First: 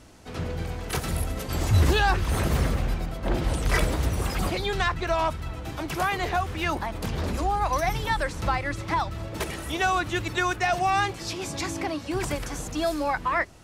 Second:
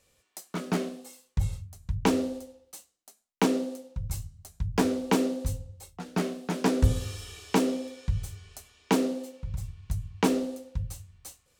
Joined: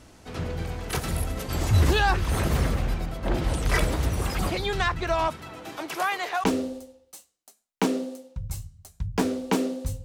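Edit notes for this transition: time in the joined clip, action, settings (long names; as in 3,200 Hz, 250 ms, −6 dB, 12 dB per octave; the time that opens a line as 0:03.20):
first
0:05.27–0:06.44: high-pass filter 150 Hz → 750 Hz
0:06.44: continue with second from 0:02.04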